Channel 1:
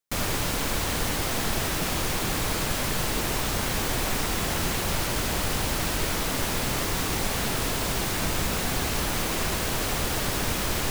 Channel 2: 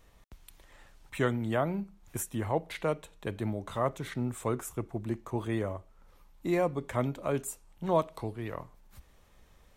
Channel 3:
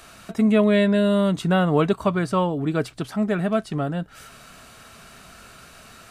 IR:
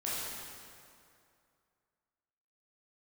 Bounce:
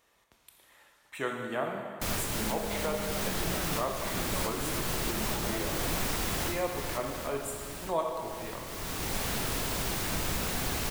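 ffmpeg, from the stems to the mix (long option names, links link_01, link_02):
-filter_complex "[0:a]highshelf=frequency=12000:gain=3.5,adelay=1900,volume=5dB,afade=type=out:start_time=6.66:duration=0.8:silence=0.298538,afade=type=in:start_time=8.66:duration=0.53:silence=0.316228[link_01];[1:a]highpass=frequency=620:poles=1,volume=-4.5dB,asplit=3[link_02][link_03][link_04];[link_03]volume=-3dB[link_05];[2:a]acompressor=threshold=-24dB:ratio=6,adelay=2000,volume=-13dB[link_06];[link_04]apad=whole_len=564887[link_07];[link_01][link_07]sidechaincompress=threshold=-40dB:ratio=8:attack=29:release=530[link_08];[3:a]atrim=start_sample=2205[link_09];[link_05][link_09]afir=irnorm=-1:irlink=0[link_10];[link_08][link_02][link_06][link_10]amix=inputs=4:normalize=0"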